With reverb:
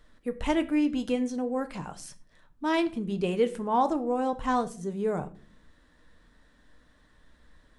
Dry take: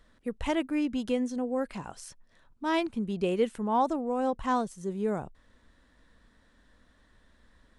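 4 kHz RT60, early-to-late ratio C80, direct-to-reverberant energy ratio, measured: 0.30 s, 20.5 dB, 8.0 dB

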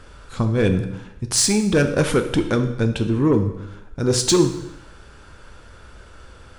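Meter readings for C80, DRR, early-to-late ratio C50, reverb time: 12.0 dB, 6.5 dB, 9.5 dB, 0.85 s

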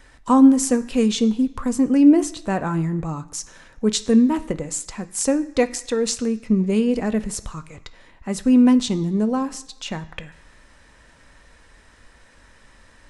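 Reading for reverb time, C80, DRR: 1.0 s, 19.0 dB, 9.5 dB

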